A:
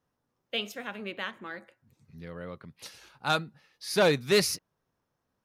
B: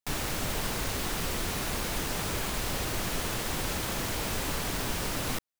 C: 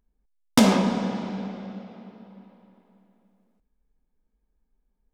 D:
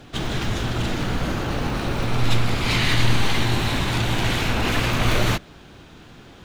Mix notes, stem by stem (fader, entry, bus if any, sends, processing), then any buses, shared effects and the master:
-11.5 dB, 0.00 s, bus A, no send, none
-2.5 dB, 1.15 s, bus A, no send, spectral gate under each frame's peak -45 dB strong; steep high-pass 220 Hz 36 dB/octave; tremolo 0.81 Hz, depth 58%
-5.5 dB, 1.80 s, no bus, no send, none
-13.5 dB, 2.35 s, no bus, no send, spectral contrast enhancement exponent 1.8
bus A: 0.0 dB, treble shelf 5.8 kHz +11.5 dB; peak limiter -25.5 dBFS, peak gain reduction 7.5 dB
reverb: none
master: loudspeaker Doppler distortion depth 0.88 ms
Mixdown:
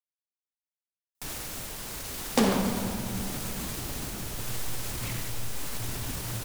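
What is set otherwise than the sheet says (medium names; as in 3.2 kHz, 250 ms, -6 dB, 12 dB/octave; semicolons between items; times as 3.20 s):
stem A: muted; stem B: missing steep high-pass 220 Hz 36 dB/octave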